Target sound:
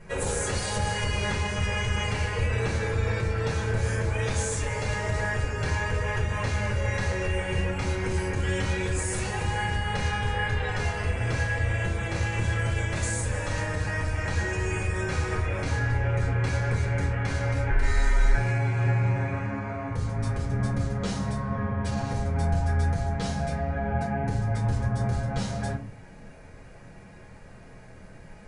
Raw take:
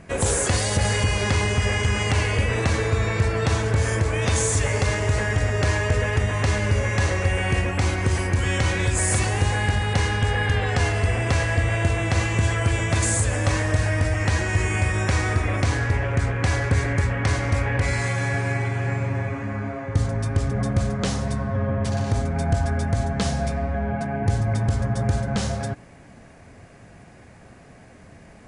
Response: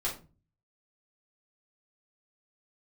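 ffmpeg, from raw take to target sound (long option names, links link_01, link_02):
-filter_complex "[0:a]alimiter=limit=-16.5dB:level=0:latency=1:release=324,asettb=1/sr,asplit=3[link_01][link_02][link_03];[link_01]atrim=end=17.694[link_04];[link_02]atrim=start=17.69:end=18.34,asetpts=PTS-STARTPTS,afade=type=in:duration=0.004:curve=qsin,afade=type=out:start_time=0.646:duration=0.004:curve=qsin,afreqshift=-150[link_05];[link_03]atrim=start=18.336[link_06];[link_04][link_05]acrossfade=duration=0.004:curve1=hsin:curve2=qsin[link_07];[link_07][link_06]acrossfade=duration=0.004:curve1=qsin:curve2=hsin[link_08];[1:a]atrim=start_sample=2205,asetrate=52920,aresample=44100[link_09];[link_08][link_09]afir=irnorm=-1:irlink=0,volume=-5dB"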